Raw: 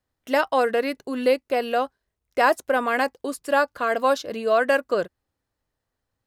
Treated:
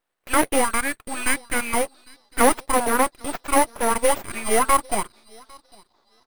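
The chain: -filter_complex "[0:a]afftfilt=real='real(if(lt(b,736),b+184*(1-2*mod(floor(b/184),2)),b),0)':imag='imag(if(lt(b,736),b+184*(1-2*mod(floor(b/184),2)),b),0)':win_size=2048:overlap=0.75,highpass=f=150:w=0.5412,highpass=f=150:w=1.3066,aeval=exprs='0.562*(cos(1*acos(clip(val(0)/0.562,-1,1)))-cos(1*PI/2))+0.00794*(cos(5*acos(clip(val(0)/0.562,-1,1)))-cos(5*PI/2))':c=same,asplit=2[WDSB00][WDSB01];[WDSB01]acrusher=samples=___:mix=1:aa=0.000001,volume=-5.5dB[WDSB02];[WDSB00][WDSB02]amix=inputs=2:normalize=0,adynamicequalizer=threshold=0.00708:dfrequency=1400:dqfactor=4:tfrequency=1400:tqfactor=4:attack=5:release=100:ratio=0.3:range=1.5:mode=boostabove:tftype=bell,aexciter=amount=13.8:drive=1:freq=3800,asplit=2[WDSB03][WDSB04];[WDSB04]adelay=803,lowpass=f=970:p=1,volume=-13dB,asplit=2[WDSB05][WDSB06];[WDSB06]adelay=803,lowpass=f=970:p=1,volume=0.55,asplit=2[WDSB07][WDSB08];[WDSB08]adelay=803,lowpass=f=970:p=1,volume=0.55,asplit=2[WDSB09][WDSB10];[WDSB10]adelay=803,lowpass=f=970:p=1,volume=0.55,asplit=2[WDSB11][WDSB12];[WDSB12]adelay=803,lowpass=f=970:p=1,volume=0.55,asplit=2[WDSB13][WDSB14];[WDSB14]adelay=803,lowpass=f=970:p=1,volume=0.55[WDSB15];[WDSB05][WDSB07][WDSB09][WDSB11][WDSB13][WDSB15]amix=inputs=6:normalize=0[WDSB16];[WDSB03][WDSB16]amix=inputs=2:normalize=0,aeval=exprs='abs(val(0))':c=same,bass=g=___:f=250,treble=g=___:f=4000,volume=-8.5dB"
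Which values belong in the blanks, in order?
22, -13, -12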